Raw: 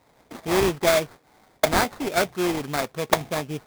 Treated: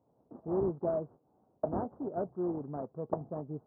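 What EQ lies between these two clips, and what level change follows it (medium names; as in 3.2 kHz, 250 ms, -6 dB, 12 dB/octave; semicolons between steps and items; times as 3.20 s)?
Gaussian low-pass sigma 11 samples; high-pass 90 Hz; -7.5 dB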